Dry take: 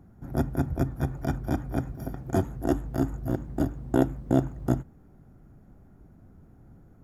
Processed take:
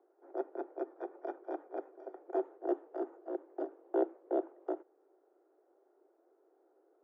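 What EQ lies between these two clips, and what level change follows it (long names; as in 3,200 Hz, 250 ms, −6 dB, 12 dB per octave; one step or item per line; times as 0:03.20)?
Butterworth high-pass 340 Hz 72 dB per octave
resonant band-pass 430 Hz, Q 0.99
high-frequency loss of the air 140 metres
−2.0 dB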